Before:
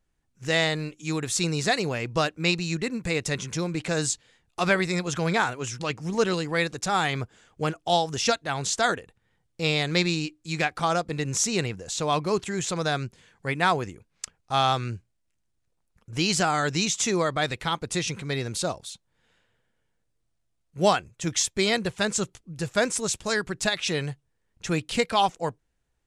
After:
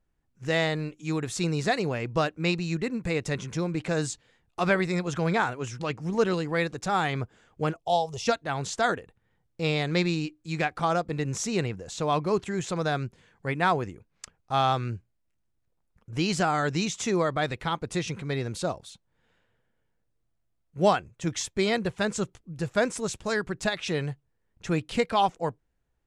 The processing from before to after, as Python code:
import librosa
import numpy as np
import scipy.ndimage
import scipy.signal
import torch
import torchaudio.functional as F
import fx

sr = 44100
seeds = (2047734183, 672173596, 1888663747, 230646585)

y = fx.fixed_phaser(x, sr, hz=650.0, stages=4, at=(7.76, 8.27))
y = fx.high_shelf(y, sr, hz=2700.0, db=-9.5)